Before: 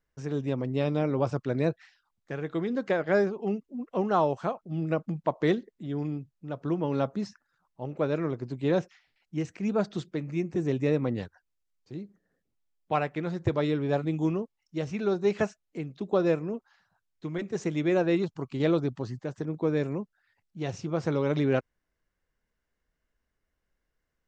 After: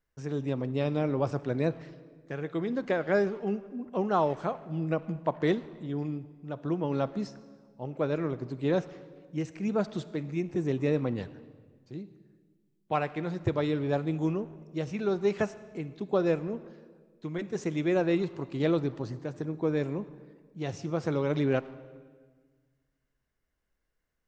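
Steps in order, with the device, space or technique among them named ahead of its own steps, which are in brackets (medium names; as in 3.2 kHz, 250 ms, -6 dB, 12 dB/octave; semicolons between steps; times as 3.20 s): saturated reverb return (on a send at -13.5 dB: reverberation RT60 1.5 s, pre-delay 42 ms + saturation -26.5 dBFS, distortion -11 dB); on the sum: trim -1.5 dB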